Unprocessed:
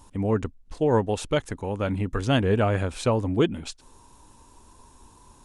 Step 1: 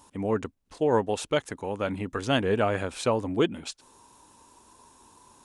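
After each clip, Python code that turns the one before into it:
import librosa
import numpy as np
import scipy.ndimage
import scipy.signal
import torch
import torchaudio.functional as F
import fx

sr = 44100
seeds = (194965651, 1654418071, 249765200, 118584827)

y = fx.highpass(x, sr, hz=280.0, slope=6)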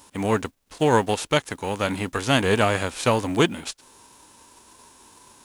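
y = fx.envelope_flatten(x, sr, power=0.6)
y = y * librosa.db_to_amplitude(4.5)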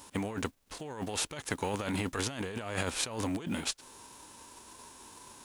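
y = fx.over_compress(x, sr, threshold_db=-29.0, ratio=-1.0)
y = y * librosa.db_to_amplitude(-6.5)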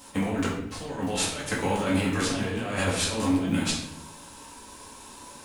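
y = fx.room_shoebox(x, sr, seeds[0], volume_m3=200.0, walls='mixed', distance_m=2.1)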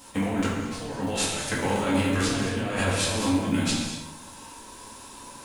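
y = fx.rev_gated(x, sr, seeds[1], gate_ms=270, shape='flat', drr_db=4.0)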